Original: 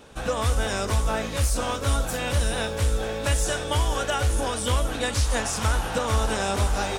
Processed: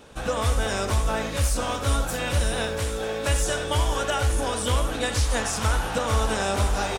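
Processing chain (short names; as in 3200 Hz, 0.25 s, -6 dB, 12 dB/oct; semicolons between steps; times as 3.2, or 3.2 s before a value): 2.79–3.29 HPF 130 Hz 6 dB/oct; speakerphone echo 80 ms, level -7 dB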